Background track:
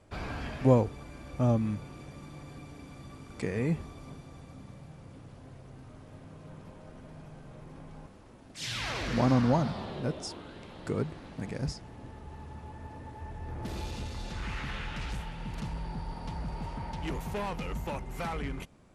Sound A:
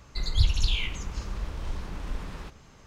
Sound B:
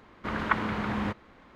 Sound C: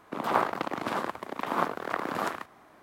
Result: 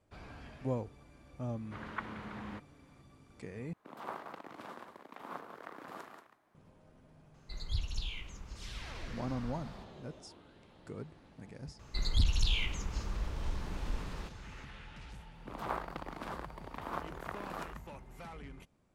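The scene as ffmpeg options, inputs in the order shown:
-filter_complex "[3:a]asplit=2[a][b];[1:a]asplit=2[c][d];[0:a]volume=-13dB[e];[a]aecho=1:1:40.82|183.7:0.251|0.398[f];[d]aeval=exprs='0.335*sin(PI/2*1.58*val(0)/0.335)':c=same[g];[e]asplit=2[h][i];[h]atrim=end=3.734[j];[f]atrim=end=2.82,asetpts=PTS-STARTPTS,volume=-17.5dB[k];[i]atrim=start=6.546[l];[2:a]atrim=end=1.55,asetpts=PTS-STARTPTS,volume=-14dB,afade=t=in:d=0.004:c=hsin,afade=t=out:st=1.546:d=0.004:c=hsin,adelay=1470[m];[c]atrim=end=2.86,asetpts=PTS-STARTPTS,volume=-13dB,afade=t=in:d=0.004:c=hsin,afade=t=out:st=2.856:d=0.004:c=hsin,adelay=7340[n];[g]atrim=end=2.86,asetpts=PTS-STARTPTS,volume=-11dB,afade=t=in:d=0.004:c=hsin,afade=t=out:st=2.856:d=0.004:c=hsin,adelay=11790[o];[b]atrim=end=2.82,asetpts=PTS-STARTPTS,volume=-12dB,afade=t=in:d=0.004:c=hsin,afade=t=out:st=2.816:d=0.004:c=hsin,adelay=15350[p];[j][k]acrossfade=d=0.004:c1=hsin:c2=hsin[q];[q][l]acrossfade=d=0.004:c1=hsin:c2=hsin[r];[r][m][n][o][p]amix=inputs=5:normalize=0"

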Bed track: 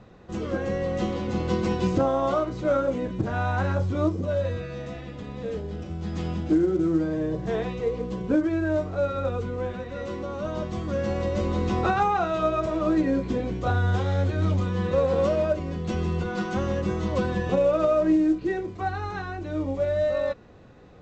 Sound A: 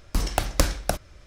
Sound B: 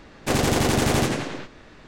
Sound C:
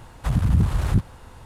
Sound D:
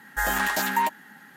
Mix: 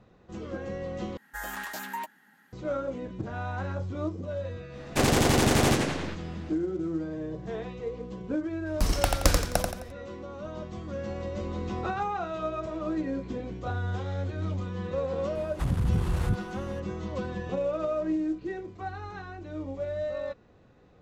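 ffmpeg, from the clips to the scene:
-filter_complex "[0:a]volume=-8dB[a];[1:a]aecho=1:1:87|174|261|348|435:0.596|0.214|0.0772|0.0278|0.01[b];[3:a]alimiter=limit=-12dB:level=0:latency=1:release=36[c];[a]asplit=2[d][e];[d]atrim=end=1.174[f];[4:a]atrim=end=1.36,asetpts=PTS-STARTPTS,volume=-12dB[g];[e]atrim=start=2.526[h];[2:a]atrim=end=1.87,asetpts=PTS-STARTPTS,volume=-1.5dB,afade=t=in:d=0.1,afade=t=out:st=1.77:d=0.1,adelay=206829S[i];[b]atrim=end=1.26,asetpts=PTS-STARTPTS,volume=-1.5dB,afade=t=in:d=0.004:c=hsin,afade=t=out:st=1.256:d=0.004:c=hsin,adelay=381906S[j];[c]atrim=end=1.45,asetpts=PTS-STARTPTS,volume=-5.5dB,afade=t=in:d=0.004:c=hsin,afade=t=out:st=1.446:d=0.004:c=hsin,adelay=15350[k];[f][g]acrossfade=d=0.004:c1=hsin:c2=hsin[l];[l][h]acrossfade=d=0.004:c1=hsin:c2=hsin[m];[m][i][j][k]amix=inputs=4:normalize=0"

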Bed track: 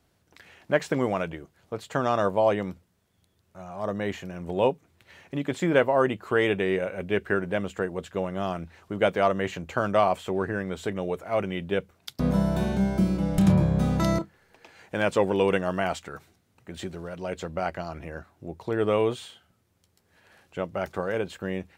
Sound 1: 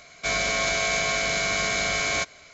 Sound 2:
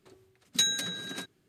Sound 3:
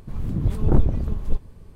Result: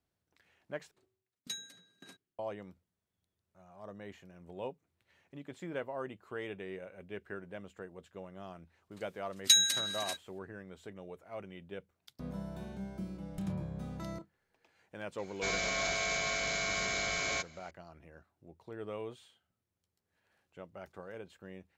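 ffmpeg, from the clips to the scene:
-filter_complex "[2:a]asplit=2[a][b];[0:a]volume=-18dB[c];[a]aeval=exprs='val(0)*pow(10,-22*if(lt(mod(1.8*n/s,1),2*abs(1.8)/1000),1-mod(1.8*n/s,1)/(2*abs(1.8)/1000),(mod(1.8*n/s,1)-2*abs(1.8)/1000)/(1-2*abs(1.8)/1000))/20)':c=same[d];[b]tiltshelf=f=1.1k:g=-9[e];[c]asplit=2[f][g];[f]atrim=end=0.914[h];[d]atrim=end=1.48,asetpts=PTS-STARTPTS,volume=-13.5dB[i];[g]atrim=start=2.386[j];[e]atrim=end=1.48,asetpts=PTS-STARTPTS,volume=-5.5dB,afade=t=in:d=0.004:c=hsin,afade=t=out:st=1.476:d=0.004:c=hsin,adelay=8910[k];[1:a]atrim=end=2.53,asetpts=PTS-STARTPTS,volume=-9dB,afade=t=in:d=0.004:c=hsin,afade=t=out:st=2.526:d=0.004:c=hsin,adelay=15180[l];[h][i]acrossfade=d=0.004:c1=hsin:c2=hsin[m];[m][j]acrossfade=d=0.004:c1=hsin:c2=hsin[n];[n][k][l]amix=inputs=3:normalize=0"

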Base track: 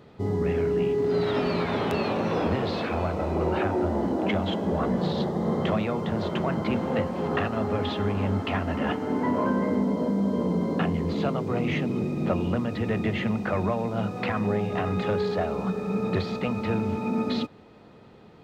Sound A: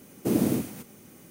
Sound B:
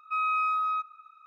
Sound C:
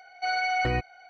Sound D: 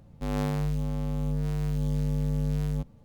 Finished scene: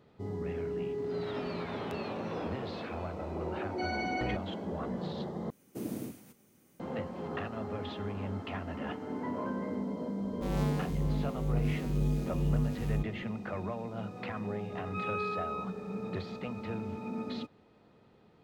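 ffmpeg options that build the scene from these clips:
-filter_complex "[0:a]volume=-11dB[a];[4:a]asplit=2[b][c];[c]adelay=4.2,afreqshift=-2.1[d];[b][d]amix=inputs=2:normalize=1[e];[2:a]tiltshelf=f=970:g=-6[f];[a]asplit=2[g][h];[g]atrim=end=5.504[i];[1:a]atrim=end=1.3,asetpts=PTS-STARTPTS,volume=-14dB[j];[h]atrim=start=6.796[k];[3:a]atrim=end=1.09,asetpts=PTS-STARTPTS,volume=-9.5dB,afade=t=in:d=0.004:c=hsin,afade=t=out:st=1.086:d=0.004:c=hsin,adelay=3560[l];[e]atrim=end=3.04,asetpts=PTS-STARTPTS,volume=-0.5dB,afade=t=in:d=0.004:c=hsin,afade=t=out:st=3.036:d=0.004:c=hsin,adelay=10200[m];[f]atrim=end=1.26,asetpts=PTS-STARTPTS,volume=-12dB,afade=t=in:d=0.004:c=hsin,afade=t=out:st=1.256:d=0.004:c=hsin,adelay=14830[n];[i][j]acrossfade=d=0.004:c1=hsin:c2=hsin[o];[o][k]acrossfade=d=0.004:c1=hsin:c2=hsin[p];[p][l][m][n]amix=inputs=4:normalize=0"

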